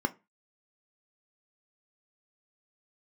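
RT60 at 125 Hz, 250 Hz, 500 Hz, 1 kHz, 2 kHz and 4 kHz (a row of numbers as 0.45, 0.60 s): 0.30, 0.30, 0.25, 0.25, 0.25, 0.20 s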